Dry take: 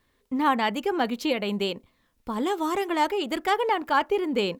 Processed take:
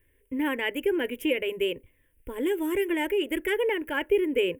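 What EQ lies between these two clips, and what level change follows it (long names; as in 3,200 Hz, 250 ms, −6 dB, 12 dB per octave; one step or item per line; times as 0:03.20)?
flat-topped bell 5,300 Hz −13.5 dB 1.2 octaves
phaser with its sweep stopped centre 500 Hz, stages 4
phaser with its sweep stopped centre 1,800 Hz, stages 4
+7.0 dB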